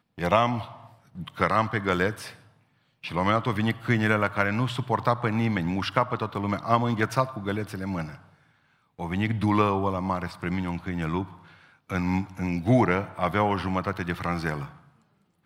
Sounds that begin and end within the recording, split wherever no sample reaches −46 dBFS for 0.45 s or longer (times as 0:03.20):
0:03.04–0:08.29
0:08.99–0:14.79